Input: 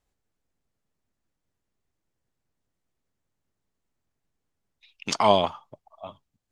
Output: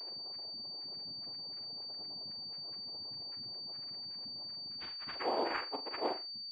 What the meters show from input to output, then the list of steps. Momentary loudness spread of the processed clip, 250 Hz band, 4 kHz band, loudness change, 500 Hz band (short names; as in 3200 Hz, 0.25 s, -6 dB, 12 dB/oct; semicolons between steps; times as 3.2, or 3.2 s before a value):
5 LU, -10.0 dB, -0.5 dB, -16.5 dB, -12.0 dB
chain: HPF 340 Hz 6 dB/oct; bell 1200 Hz +3 dB 2.3 oct; in parallel at -3 dB: upward compressor, threshold -26 dBFS; on the sum: limiter -8.5 dBFS, peak gain reduction 9.5 dB; reverse; compressor 8:1, threshold -35 dBFS, peak gain reduction 20 dB; reverse; loudest bins only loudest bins 1; noise vocoder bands 4; flutter echo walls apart 7.2 m, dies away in 0.25 s; pulse-width modulation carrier 4600 Hz; gain +13.5 dB